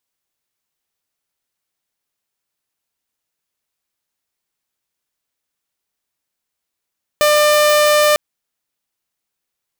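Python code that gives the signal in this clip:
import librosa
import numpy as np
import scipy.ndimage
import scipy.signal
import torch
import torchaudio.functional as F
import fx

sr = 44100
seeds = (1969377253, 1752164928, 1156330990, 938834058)

y = 10.0 ** (-7.5 / 20.0) * (2.0 * np.mod(598.0 * (np.arange(round(0.95 * sr)) / sr), 1.0) - 1.0)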